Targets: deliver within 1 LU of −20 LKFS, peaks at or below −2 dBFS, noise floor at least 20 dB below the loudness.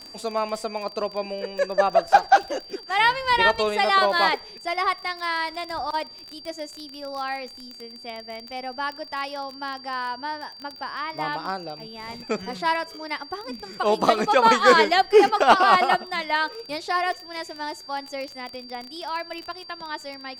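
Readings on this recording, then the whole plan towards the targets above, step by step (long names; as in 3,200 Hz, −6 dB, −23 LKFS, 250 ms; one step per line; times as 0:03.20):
crackle rate 22 per second; interfering tone 4,700 Hz; level of the tone −41 dBFS; integrated loudness −23.0 LKFS; sample peak −4.0 dBFS; target loudness −20.0 LKFS
→ click removal
notch filter 4,700 Hz, Q 30
level +3 dB
brickwall limiter −2 dBFS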